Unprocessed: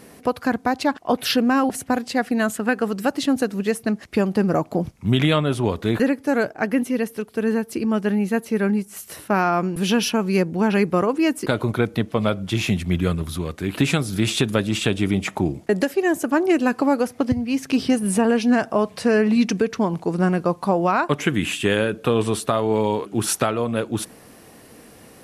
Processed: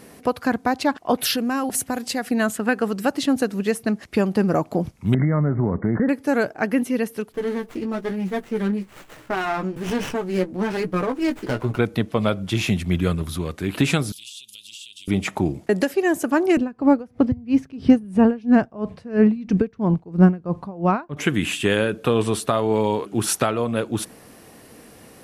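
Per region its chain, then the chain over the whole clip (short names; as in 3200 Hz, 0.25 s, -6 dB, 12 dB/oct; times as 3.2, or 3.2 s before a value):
1.21–2.31 compressor 2:1, threshold -24 dBFS + high shelf 5700 Hz +10 dB
5.14–6.09 bell 170 Hz +10.5 dB 1.4 oct + compressor 5:1, threshold -16 dBFS + brick-wall FIR low-pass 2200 Hz
7.32–11.79 flange 1.1 Hz, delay 6.2 ms, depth 3.3 ms, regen -30% + doubler 16 ms -8 dB + running maximum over 9 samples
14.12–15.08 elliptic high-pass 2900 Hz + compressor 5:1, threshold -37 dBFS
16.57–21.17 RIAA curve playback + dB-linear tremolo 3 Hz, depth 23 dB
whole clip: dry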